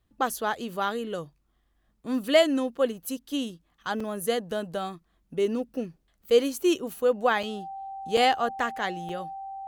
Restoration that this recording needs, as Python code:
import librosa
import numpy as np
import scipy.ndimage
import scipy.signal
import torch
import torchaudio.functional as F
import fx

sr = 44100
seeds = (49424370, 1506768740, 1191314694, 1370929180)

y = fx.notch(x, sr, hz=780.0, q=30.0)
y = fx.fix_interpolate(y, sr, at_s=(4.0, 7.43, 8.17, 9.09), length_ms=4.0)